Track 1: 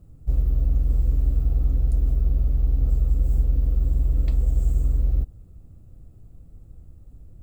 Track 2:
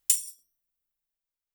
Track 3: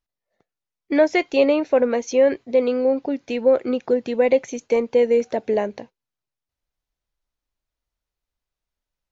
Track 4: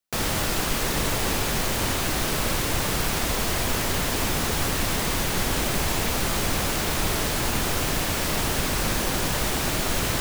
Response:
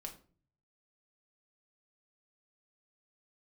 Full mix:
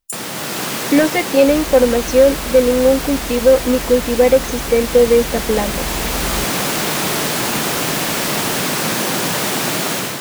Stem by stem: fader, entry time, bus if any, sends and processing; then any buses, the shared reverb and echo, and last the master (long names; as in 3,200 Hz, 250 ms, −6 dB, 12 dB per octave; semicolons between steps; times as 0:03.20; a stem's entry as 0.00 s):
−12.5 dB, 1.20 s, no send, no processing
−5.5 dB, 0.00 s, no send, expanding power law on the bin magnitudes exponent 1.7
−0.5 dB, 0.00 s, no send, soft clipping −7.5 dBFS, distortion −23 dB; comb filter 3.9 ms, depth 95%
−0.5 dB, 0.00 s, no send, high-pass filter 140 Hz 24 dB per octave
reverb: not used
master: automatic gain control gain up to 8 dB